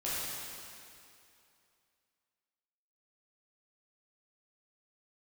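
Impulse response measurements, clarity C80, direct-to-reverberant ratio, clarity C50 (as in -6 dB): -2.0 dB, -10.0 dB, -4.5 dB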